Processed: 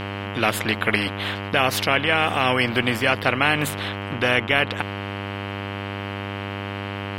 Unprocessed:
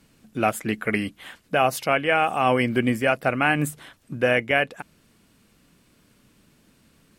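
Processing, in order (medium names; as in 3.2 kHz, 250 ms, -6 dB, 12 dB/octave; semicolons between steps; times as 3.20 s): mains buzz 100 Hz, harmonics 32, -37 dBFS -7 dB/octave; resonant high shelf 5 kHz -13.5 dB, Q 1.5; spectrum-flattening compressor 2:1; trim +2.5 dB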